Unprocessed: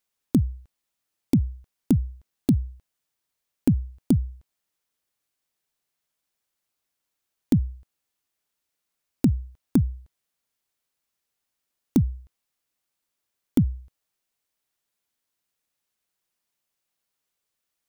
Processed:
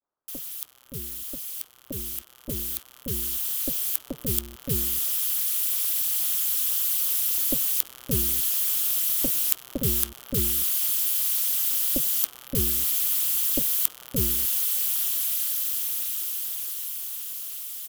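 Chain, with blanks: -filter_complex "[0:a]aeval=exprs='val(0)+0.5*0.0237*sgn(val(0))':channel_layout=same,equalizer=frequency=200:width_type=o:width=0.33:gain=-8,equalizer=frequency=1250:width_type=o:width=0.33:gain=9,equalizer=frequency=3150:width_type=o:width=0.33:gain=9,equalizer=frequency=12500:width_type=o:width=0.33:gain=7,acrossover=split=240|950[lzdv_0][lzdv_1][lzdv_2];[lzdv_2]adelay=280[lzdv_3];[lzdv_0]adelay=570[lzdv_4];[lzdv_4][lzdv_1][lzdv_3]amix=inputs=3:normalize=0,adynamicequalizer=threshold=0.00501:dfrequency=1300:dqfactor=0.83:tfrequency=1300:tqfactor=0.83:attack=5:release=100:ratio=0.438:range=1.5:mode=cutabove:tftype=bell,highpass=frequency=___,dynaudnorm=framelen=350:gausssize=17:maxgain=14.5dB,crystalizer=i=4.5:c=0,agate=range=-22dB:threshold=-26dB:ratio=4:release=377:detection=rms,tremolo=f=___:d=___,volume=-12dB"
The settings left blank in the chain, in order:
42, 290, 0.947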